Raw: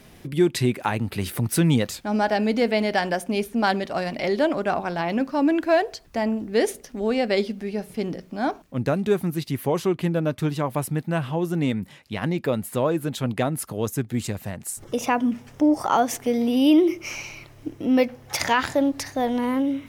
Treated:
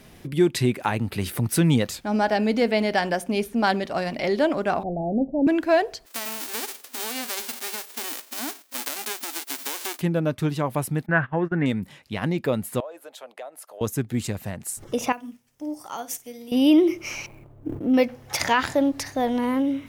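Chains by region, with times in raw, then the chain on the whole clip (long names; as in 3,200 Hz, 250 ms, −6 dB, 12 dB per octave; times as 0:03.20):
0:04.83–0:05.47: Butterworth low-pass 790 Hz 96 dB per octave + low-shelf EQ 65 Hz +12 dB
0:06.05–0:10.00: spectral envelope flattened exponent 0.1 + downward compressor 8 to 1, threshold −25 dBFS + linear-phase brick-wall high-pass 230 Hz
0:11.06–0:11.66: low-pass with resonance 1,700 Hz, resonance Q 6 + noise gate −28 dBFS, range −22 dB
0:12.80–0:13.81: four-pole ladder high-pass 530 Hz, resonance 55% + downward compressor 3 to 1, threshold −36 dBFS
0:15.12–0:16.52: first-order pre-emphasis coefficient 0.8 + flutter between parallel walls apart 9.1 metres, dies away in 0.26 s + expander for the loud parts, over −52 dBFS
0:17.26–0:17.94: running median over 25 samples + parametric band 4,600 Hz −14 dB 2.1 octaves + level that may fall only so fast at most 68 dB per second
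whole clip: no processing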